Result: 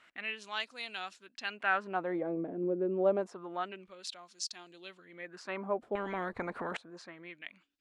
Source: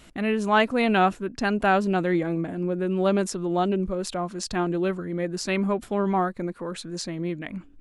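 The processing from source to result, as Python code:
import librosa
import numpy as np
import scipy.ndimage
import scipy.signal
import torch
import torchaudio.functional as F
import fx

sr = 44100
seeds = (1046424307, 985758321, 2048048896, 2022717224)

y = fx.dynamic_eq(x, sr, hz=1400.0, q=1.3, threshold_db=-45.0, ratio=4.0, max_db=-5, at=(4.29, 5.28), fade=0.02)
y = fx.filter_lfo_bandpass(y, sr, shape='sine', hz=0.28, low_hz=420.0, high_hz=5300.0, q=1.7)
y = fx.spectral_comp(y, sr, ratio=4.0, at=(5.95, 6.77))
y = y * 10.0 ** (-2.5 / 20.0)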